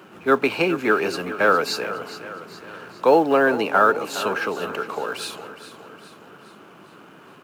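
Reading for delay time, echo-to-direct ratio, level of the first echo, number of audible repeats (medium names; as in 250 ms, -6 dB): 413 ms, -12.0 dB, -13.5 dB, 4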